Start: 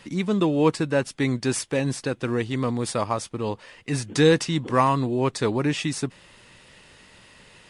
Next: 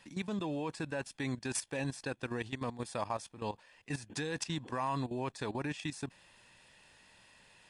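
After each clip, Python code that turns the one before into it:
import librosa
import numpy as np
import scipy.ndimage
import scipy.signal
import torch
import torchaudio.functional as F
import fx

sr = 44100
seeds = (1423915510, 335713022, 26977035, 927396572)

y = fx.bass_treble(x, sr, bass_db=-6, treble_db=1)
y = fx.level_steps(y, sr, step_db=14)
y = y + 0.38 * np.pad(y, (int(1.2 * sr / 1000.0), 0))[:len(y)]
y = y * librosa.db_to_amplitude(-6.5)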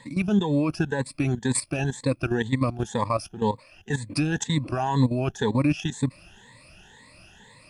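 y = fx.spec_ripple(x, sr, per_octave=1.0, drift_hz=2.0, depth_db=19)
y = fx.low_shelf(y, sr, hz=320.0, db=10.5)
y = y * librosa.db_to_amplitude(4.5)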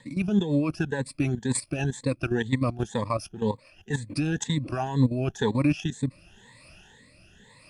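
y = fx.rotary_switch(x, sr, hz=7.0, then_hz=0.9, switch_at_s=4.05)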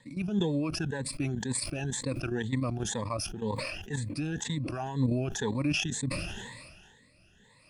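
y = fx.sustainer(x, sr, db_per_s=34.0)
y = y * librosa.db_to_amplitude(-7.0)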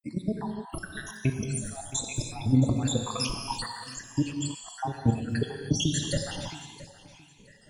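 y = fx.spec_dropout(x, sr, seeds[0], share_pct=82)
y = fx.echo_feedback(y, sr, ms=671, feedback_pct=25, wet_db=-17.5)
y = fx.rev_gated(y, sr, seeds[1], gate_ms=340, shape='flat', drr_db=3.0)
y = y * librosa.db_to_amplitude(8.5)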